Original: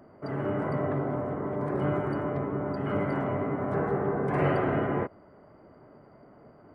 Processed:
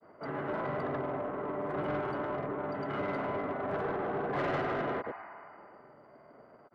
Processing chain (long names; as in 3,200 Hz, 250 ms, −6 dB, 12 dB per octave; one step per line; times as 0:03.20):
granular cloud 100 ms, grains 20 per second, pitch spread up and down by 0 semitones
healed spectral selection 0:05.07–0:05.97, 650–3,000 Hz both
mid-hump overdrive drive 16 dB, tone 3,200 Hz, clips at −17.5 dBFS
level −7 dB